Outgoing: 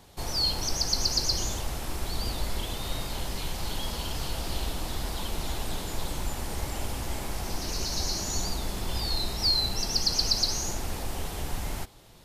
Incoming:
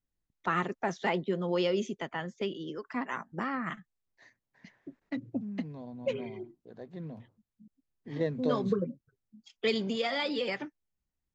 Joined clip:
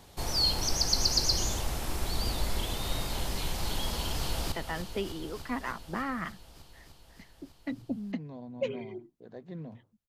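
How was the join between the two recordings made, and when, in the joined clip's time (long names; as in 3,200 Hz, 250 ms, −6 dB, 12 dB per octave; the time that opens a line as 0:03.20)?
outgoing
0:04.15–0:04.52: delay throw 300 ms, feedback 80%, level −9 dB
0:04.52: continue with incoming from 0:01.97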